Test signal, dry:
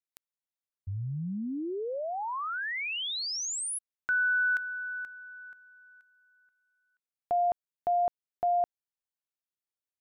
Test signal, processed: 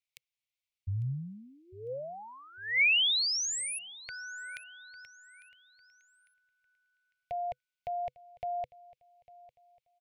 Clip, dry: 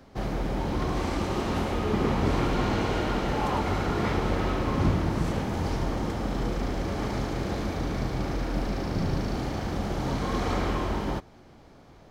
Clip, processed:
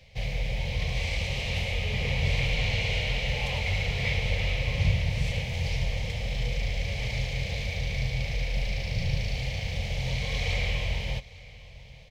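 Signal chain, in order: FFT filter 130 Hz 0 dB, 330 Hz -30 dB, 500 Hz -4 dB, 1.4 kHz -23 dB, 2.2 kHz +9 dB, 10 kHz -5 dB; on a send: feedback delay 851 ms, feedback 35%, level -20.5 dB; on the sum: trim +2 dB

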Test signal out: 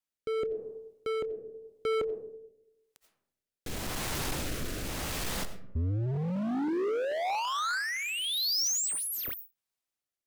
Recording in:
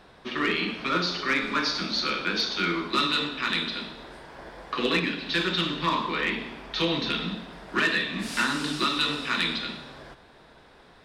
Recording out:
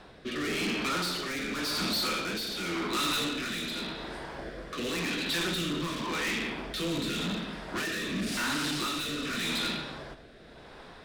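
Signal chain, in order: algorithmic reverb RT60 0.95 s, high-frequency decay 0.4×, pre-delay 45 ms, DRR 12 dB; overload inside the chain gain 32.5 dB; rotary cabinet horn 0.9 Hz; trim +5 dB

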